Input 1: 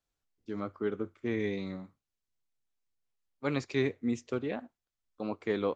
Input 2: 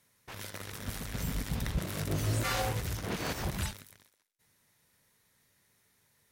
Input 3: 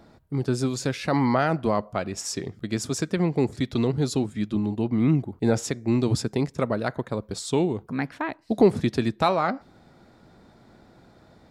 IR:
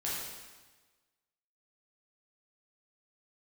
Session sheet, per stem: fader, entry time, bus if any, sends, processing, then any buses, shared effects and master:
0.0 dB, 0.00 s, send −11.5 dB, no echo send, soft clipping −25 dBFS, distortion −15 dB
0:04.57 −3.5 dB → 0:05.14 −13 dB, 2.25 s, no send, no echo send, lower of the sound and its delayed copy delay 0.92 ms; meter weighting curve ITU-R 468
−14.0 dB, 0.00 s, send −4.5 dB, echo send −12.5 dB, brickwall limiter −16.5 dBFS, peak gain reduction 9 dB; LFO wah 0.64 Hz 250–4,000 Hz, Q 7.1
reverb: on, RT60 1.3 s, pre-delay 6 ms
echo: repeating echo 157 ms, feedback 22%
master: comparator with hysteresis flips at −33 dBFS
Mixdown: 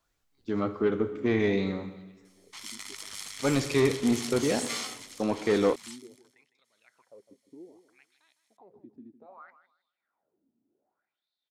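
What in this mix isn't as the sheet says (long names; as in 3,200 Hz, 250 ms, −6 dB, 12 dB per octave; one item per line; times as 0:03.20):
stem 1 0.0 dB → +7.0 dB
stem 3: send off
master: missing comparator with hysteresis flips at −33 dBFS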